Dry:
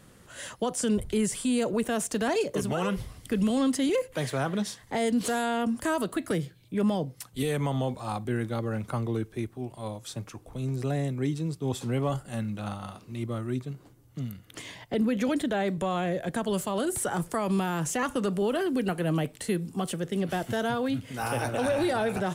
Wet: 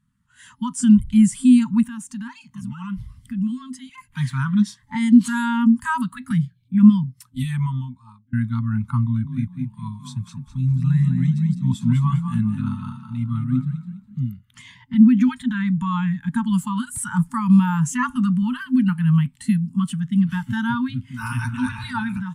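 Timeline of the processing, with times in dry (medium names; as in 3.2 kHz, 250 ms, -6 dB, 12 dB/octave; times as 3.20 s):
1.87–3.98 s: compression 2:1, threshold -37 dBFS
7.38–8.33 s: fade out
9.04–14.19 s: frequency-shifting echo 204 ms, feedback 41%, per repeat +32 Hz, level -5 dB
whole clip: FFT band-reject 260–860 Hz; level rider gain up to 7 dB; spectral contrast expander 1.5:1; trim +7.5 dB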